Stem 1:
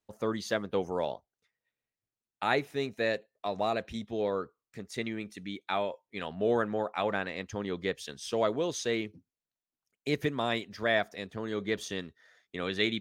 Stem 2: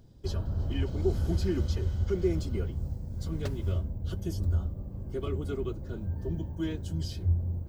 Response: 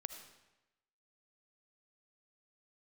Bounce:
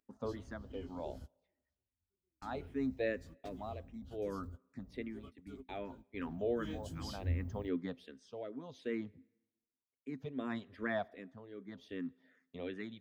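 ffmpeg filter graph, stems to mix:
-filter_complex "[0:a]tremolo=f=0.65:d=0.73,asplit=2[a][b];[b]afreqshift=-2.6[c];[a][c]amix=inputs=2:normalize=1,volume=-4dB,asplit=3[d][e][f];[e]volume=-16dB[g];[1:a]crystalizer=i=9:c=0,flanger=delay=15.5:depth=6.5:speed=1.7,volume=-8dB,afade=t=in:st=6.46:d=0.27:silence=0.298538[h];[f]apad=whole_len=339112[i];[h][i]sidechaingate=range=-43dB:threshold=-59dB:ratio=16:detection=peak[j];[2:a]atrim=start_sample=2205[k];[g][k]afir=irnorm=-1:irlink=0[l];[d][j][l]amix=inputs=3:normalize=0,lowpass=f=1.5k:p=1,equalizer=f=260:t=o:w=0.2:g=14"

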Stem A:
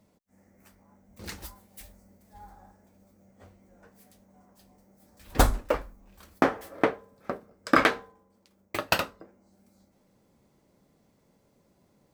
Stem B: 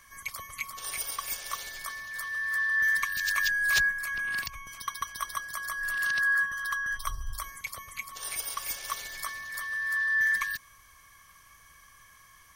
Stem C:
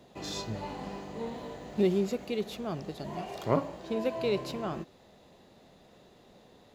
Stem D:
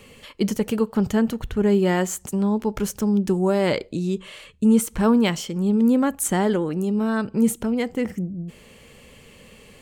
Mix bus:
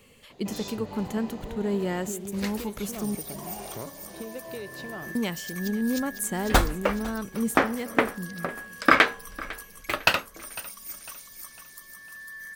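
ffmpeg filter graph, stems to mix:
-filter_complex "[0:a]equalizer=f=2.4k:t=o:w=2.1:g=7.5,adelay=1150,volume=-1dB,asplit=2[a][b];[b]volume=-19.5dB[c];[1:a]bass=f=250:g=6,treble=f=4k:g=6,crystalizer=i=1:c=0,adelay=2200,volume=-17dB,asplit=2[d][e];[e]volume=-6dB[f];[2:a]acompressor=threshold=-37dB:ratio=6,adelay=300,volume=1.5dB[g];[3:a]highshelf=f=11k:g=9,volume=-9dB,asplit=3[h][i][j];[h]atrim=end=3.15,asetpts=PTS-STARTPTS,afade=t=out:st=3.146:d=0.004:c=hsin[k];[i]atrim=start=3.15:end=5.15,asetpts=PTS-STARTPTS,volume=0[l];[j]atrim=start=5.15,asetpts=PTS-STARTPTS,afade=t=in:d=0.004:c=hsin[m];[k][l][m]concat=n=3:v=0:a=1,asplit=2[n][o];[o]volume=-20dB[p];[c][f][p]amix=inputs=3:normalize=0,aecho=0:1:502|1004|1506|2008|2510|3012:1|0.43|0.185|0.0795|0.0342|0.0147[q];[a][d][g][n][q]amix=inputs=5:normalize=0"

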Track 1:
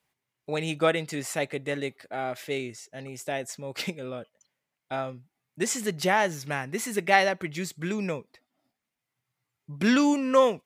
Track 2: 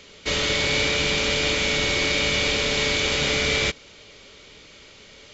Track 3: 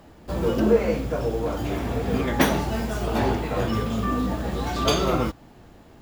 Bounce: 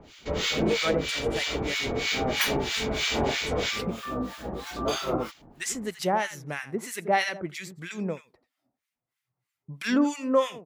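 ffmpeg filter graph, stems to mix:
-filter_complex "[0:a]volume=1.5dB,asplit=3[a][b][c];[b]volume=-13.5dB[d];[1:a]volume=-2.5dB,asplit=2[e][f];[f]volume=-4.5dB[g];[2:a]acrossover=split=240[h][i];[h]acompressor=threshold=-36dB:ratio=6[j];[j][i]amix=inputs=2:normalize=0,volume=-1dB[k];[c]apad=whole_len=235181[l];[e][l]sidechaincompress=threshold=-28dB:ratio=8:attack=16:release=728[m];[d][g]amix=inputs=2:normalize=0,aecho=0:1:85:1[n];[a][m][k][n]amix=inputs=4:normalize=0,acrossover=split=1200[o][p];[o]aeval=exprs='val(0)*(1-1/2+1/2*cos(2*PI*3.1*n/s))':c=same[q];[p]aeval=exprs='val(0)*(1-1/2-1/2*cos(2*PI*3.1*n/s))':c=same[r];[q][r]amix=inputs=2:normalize=0"

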